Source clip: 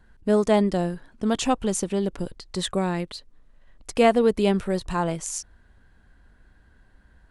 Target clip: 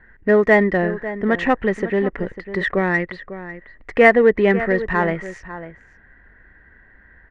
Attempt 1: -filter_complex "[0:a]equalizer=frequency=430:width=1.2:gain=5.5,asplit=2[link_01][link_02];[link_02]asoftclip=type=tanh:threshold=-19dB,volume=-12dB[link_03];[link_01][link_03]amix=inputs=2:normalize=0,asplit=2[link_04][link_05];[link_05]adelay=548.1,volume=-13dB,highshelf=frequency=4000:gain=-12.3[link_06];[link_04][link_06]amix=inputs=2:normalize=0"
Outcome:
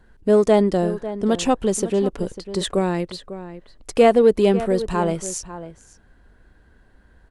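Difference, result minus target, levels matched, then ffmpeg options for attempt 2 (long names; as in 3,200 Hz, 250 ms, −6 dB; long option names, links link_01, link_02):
2,000 Hz band −13.0 dB
-filter_complex "[0:a]lowpass=frequency=1900:width_type=q:width=13,equalizer=frequency=430:width=1.2:gain=5.5,asplit=2[link_01][link_02];[link_02]asoftclip=type=tanh:threshold=-19dB,volume=-12dB[link_03];[link_01][link_03]amix=inputs=2:normalize=0,asplit=2[link_04][link_05];[link_05]adelay=548.1,volume=-13dB,highshelf=frequency=4000:gain=-12.3[link_06];[link_04][link_06]amix=inputs=2:normalize=0"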